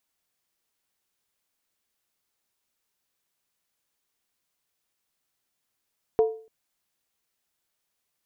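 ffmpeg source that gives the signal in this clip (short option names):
-f lavfi -i "aevalsrc='0.2*pow(10,-3*t/0.42)*sin(2*PI*443*t)+0.0562*pow(10,-3*t/0.333)*sin(2*PI*706.1*t)+0.0158*pow(10,-3*t/0.287)*sin(2*PI*946.2*t)+0.00447*pow(10,-3*t/0.277)*sin(2*PI*1017.1*t)+0.00126*pow(10,-3*t/0.258)*sin(2*PI*1175.3*t)':d=0.29:s=44100"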